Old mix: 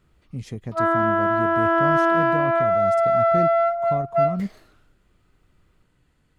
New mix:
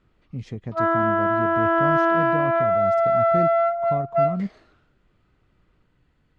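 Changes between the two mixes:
background: add high-pass filter 170 Hz
master: add high-frequency loss of the air 120 metres

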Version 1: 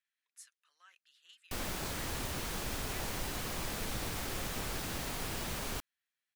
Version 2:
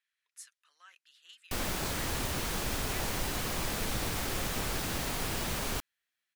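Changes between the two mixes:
speech +5.0 dB
background +4.5 dB

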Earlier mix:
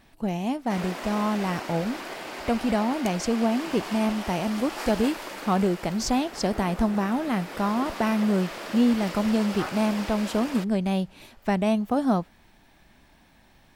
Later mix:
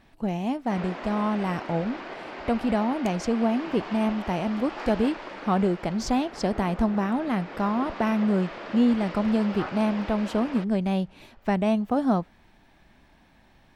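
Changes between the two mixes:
background: add high-frequency loss of the air 140 metres
master: add high-shelf EQ 5,700 Hz −10.5 dB

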